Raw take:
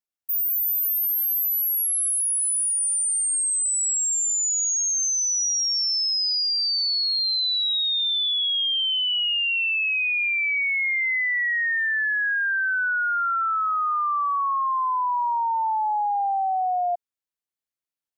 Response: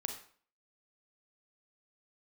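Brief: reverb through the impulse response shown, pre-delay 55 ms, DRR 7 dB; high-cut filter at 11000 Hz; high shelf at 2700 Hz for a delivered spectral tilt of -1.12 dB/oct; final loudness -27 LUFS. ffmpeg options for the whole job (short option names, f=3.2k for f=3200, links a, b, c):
-filter_complex "[0:a]lowpass=11k,highshelf=f=2.7k:g=3.5,asplit=2[a][b];[1:a]atrim=start_sample=2205,adelay=55[c];[b][c]afir=irnorm=-1:irlink=0,volume=-7.5dB[d];[a][d]amix=inputs=2:normalize=0,volume=-8dB"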